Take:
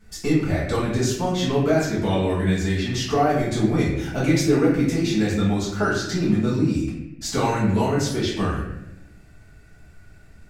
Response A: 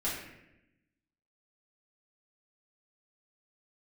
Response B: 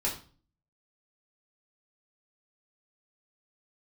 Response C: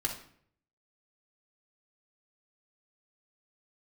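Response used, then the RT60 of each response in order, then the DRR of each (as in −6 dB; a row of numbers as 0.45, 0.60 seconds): A; 0.90, 0.40, 0.60 seconds; −9.0, −4.5, 0.0 decibels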